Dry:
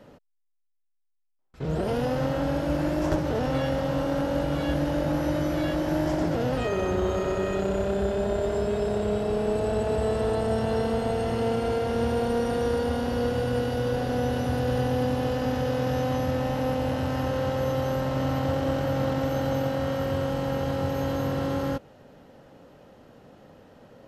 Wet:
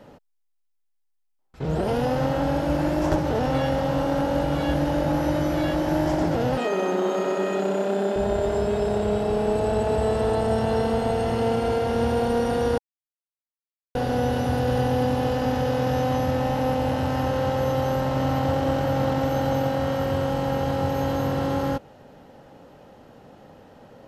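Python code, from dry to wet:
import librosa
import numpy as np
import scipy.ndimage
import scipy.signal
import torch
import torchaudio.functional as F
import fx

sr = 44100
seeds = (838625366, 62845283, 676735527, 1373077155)

y = fx.steep_highpass(x, sr, hz=180.0, slope=48, at=(6.57, 8.16))
y = fx.edit(y, sr, fx.silence(start_s=12.78, length_s=1.17), tone=tone)
y = fx.peak_eq(y, sr, hz=830.0, db=5.0, octaves=0.29)
y = y * librosa.db_to_amplitude(2.5)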